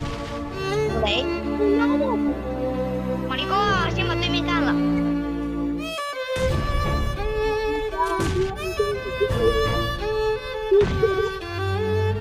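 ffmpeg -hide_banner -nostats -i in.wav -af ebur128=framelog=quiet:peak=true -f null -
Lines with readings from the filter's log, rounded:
Integrated loudness:
  I:         -23.3 LUFS
  Threshold: -33.3 LUFS
Loudness range:
  LRA:         2.1 LU
  Threshold: -43.3 LUFS
  LRA low:   -24.7 LUFS
  LRA high:  -22.5 LUFS
True peak:
  Peak:       -9.7 dBFS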